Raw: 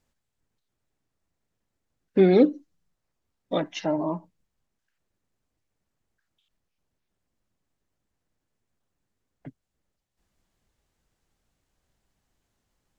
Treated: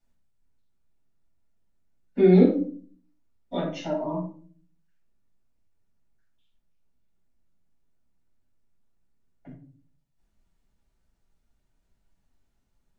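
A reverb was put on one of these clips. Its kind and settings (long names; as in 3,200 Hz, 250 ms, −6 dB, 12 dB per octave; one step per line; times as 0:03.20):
rectangular room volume 350 cubic metres, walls furnished, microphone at 7.4 metres
level −14 dB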